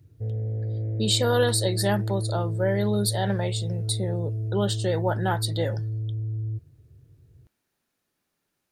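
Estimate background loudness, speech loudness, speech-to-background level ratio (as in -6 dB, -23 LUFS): -30.0 LUFS, -27.0 LUFS, 3.0 dB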